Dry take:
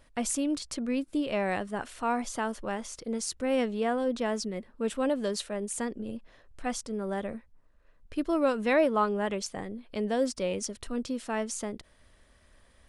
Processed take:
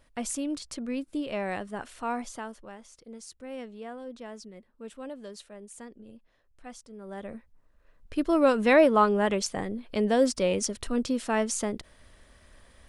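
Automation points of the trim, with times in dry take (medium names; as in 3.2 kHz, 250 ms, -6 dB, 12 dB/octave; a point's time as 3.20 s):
2.18 s -2.5 dB
2.73 s -12 dB
6.94 s -12 dB
7.36 s -2 dB
8.55 s +5 dB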